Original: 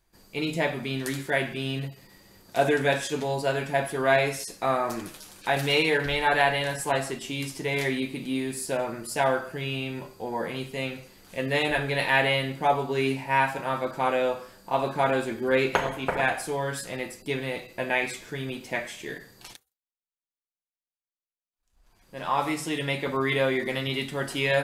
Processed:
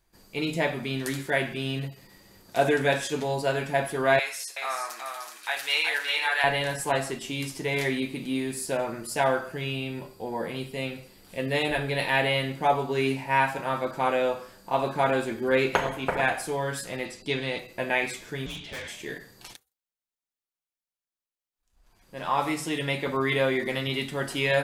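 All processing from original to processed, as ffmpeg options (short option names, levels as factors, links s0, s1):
-filter_complex "[0:a]asettb=1/sr,asplit=3[s0][s1][s2];[s0]atrim=end=4.194[s3];[s1]atrim=start=4.19:end=6.44,asetpts=PTS-STARTPTS,afade=t=in:d=0.004:c=qsin,afade=t=out:st=2.246:d=0.004:c=qsin,highpass=1200,aecho=1:1:373:0.531,atrim=end_sample=99225[s4];[s2]atrim=start=6.436[s5];[s3][s4]acrossfade=d=0.004:c1=hsin:c2=qsin[s6];[s6][s5]acrossfade=d=0.004:c1=qsin:c2=hsin,asettb=1/sr,asplit=3[s7][s8][s9];[s7]atrim=end=9.724[s10];[s8]atrim=start=9.72:end=12.36,asetpts=PTS-STARTPTS,afade=t=in:d=0.004:c=qsin,afade=t=out:st=2.636:d=0.004:c=qsin,equalizer=f=1400:t=o:w=1.5:g=-3.5,bandreject=f=6400:w=6.9[s11];[s9]atrim=start=12.356[s12];[s10][s11]acrossfade=d=0.004:c1=hsin:c2=qsin[s13];[s13][s12]acrossfade=d=0.004:c1=qsin:c2=hsin,asettb=1/sr,asplit=3[s14][s15][s16];[s14]atrim=end=17.054[s17];[s15]atrim=start=17.05:end=17.59,asetpts=PTS-STARTPTS,afade=t=in:d=0.004:c=qsin,afade=t=out:st=0.536:d=0.004:c=qsin,lowpass=8300,equalizer=f=3900:t=o:w=1:g=6.5[s18];[s16]atrim=start=17.586[s19];[s17][s18]acrossfade=d=0.004:c1=hsin:c2=qsin[s20];[s20][s19]acrossfade=d=0.004:c1=qsin:c2=hsin,asettb=1/sr,asplit=3[s21][s22][s23];[s21]atrim=end=18.464[s24];[s22]atrim=start=18.46:end=18.88,asetpts=PTS-STARTPTS,afade=t=in:d=0.004:c=qsin,afade=t=out:st=0.416:d=0.004:c=qsin,lowpass=f=3500:t=q:w=6.3,aeval=exprs='(tanh(50.1*val(0)+0.25)-tanh(0.25))/50.1':c=same,afreqshift=-89[s25];[s23]atrim=start=18.876[s26];[s24][s25]acrossfade=d=0.004:c1=hsin:c2=qsin[s27];[s27][s26]acrossfade=d=0.004:c1=qsin:c2=hsin"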